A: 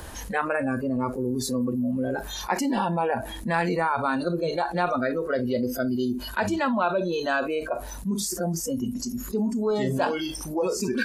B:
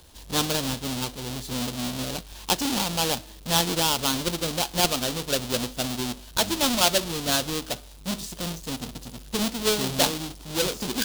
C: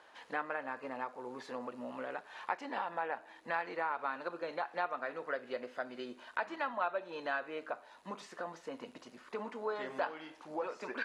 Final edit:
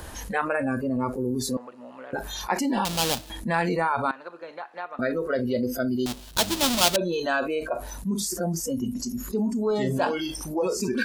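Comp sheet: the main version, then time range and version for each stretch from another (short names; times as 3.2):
A
1.57–2.13 from C
2.85–3.3 from B
4.11–4.99 from C
6.06–6.96 from B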